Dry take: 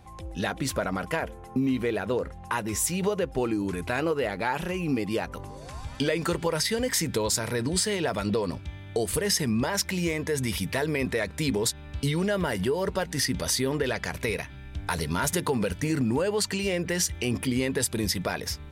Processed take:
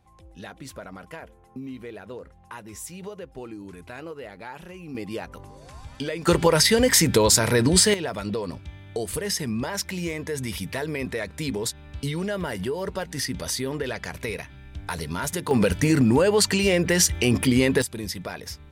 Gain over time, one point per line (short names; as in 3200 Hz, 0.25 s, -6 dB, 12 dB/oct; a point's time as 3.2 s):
-11 dB
from 4.95 s -4 dB
from 6.27 s +8.5 dB
from 7.94 s -2 dB
from 15.51 s +7 dB
from 17.82 s -4.5 dB